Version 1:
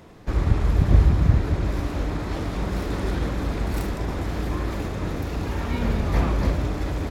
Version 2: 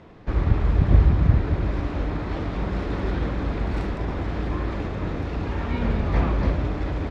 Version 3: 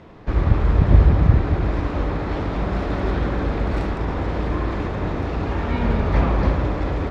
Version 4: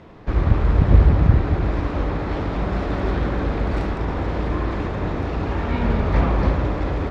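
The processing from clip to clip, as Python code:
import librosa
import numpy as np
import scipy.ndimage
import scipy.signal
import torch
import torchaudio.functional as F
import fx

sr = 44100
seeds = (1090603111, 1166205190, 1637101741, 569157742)

y1 = scipy.signal.sosfilt(scipy.signal.butter(2, 3500.0, 'lowpass', fs=sr, output='sos'), x)
y2 = fx.echo_wet_bandpass(y1, sr, ms=81, feedback_pct=78, hz=770.0, wet_db=-5.0)
y2 = y2 * librosa.db_to_amplitude(3.0)
y3 = fx.doppler_dist(y2, sr, depth_ms=0.37)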